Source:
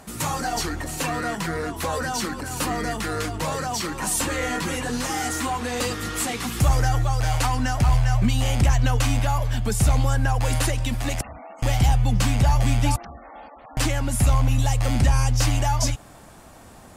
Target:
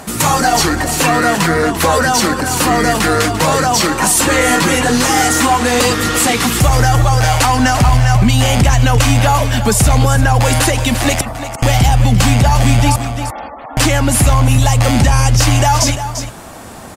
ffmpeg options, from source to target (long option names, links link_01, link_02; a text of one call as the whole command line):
ffmpeg -i in.wav -af "lowshelf=frequency=72:gain=-8.5,aecho=1:1:345:0.237,alimiter=level_in=15.5dB:limit=-1dB:release=50:level=0:latency=1,volume=-1dB" out.wav